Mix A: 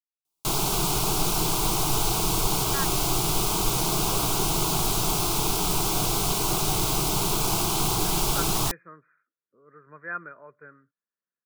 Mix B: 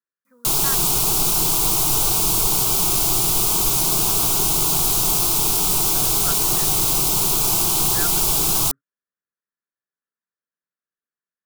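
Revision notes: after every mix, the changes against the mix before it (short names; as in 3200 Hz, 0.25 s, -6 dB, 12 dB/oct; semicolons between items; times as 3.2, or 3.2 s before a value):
speech: entry -2.10 s; master: add high shelf 5500 Hz +11.5 dB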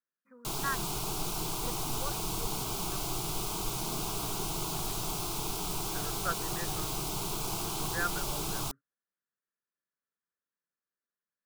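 background -10.0 dB; master: add high shelf 5500 Hz -11.5 dB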